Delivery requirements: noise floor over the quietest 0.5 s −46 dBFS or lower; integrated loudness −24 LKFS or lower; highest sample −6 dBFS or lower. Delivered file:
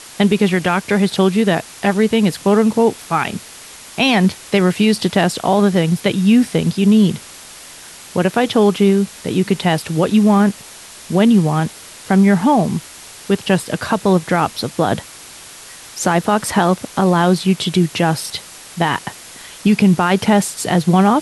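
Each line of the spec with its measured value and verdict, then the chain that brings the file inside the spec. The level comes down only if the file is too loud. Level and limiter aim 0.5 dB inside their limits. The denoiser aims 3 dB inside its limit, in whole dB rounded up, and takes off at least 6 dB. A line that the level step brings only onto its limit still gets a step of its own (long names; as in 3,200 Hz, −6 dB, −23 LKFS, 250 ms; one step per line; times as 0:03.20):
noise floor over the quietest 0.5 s −37 dBFS: out of spec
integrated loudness −16.0 LKFS: out of spec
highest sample −4.0 dBFS: out of spec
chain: broadband denoise 6 dB, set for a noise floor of −37 dBFS
level −8.5 dB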